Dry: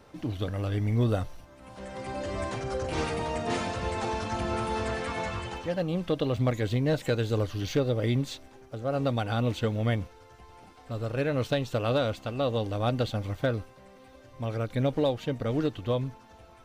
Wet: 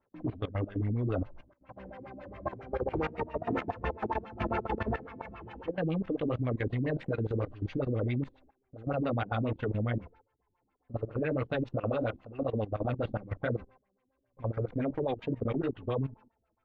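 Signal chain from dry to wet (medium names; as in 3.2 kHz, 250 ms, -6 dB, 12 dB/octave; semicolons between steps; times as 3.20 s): gate with hold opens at -39 dBFS; chorus 2.8 Hz, delay 15 ms, depth 4.4 ms; LFO low-pass sine 7.3 Hz 230–2500 Hz; level held to a coarse grid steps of 16 dB; trim +2 dB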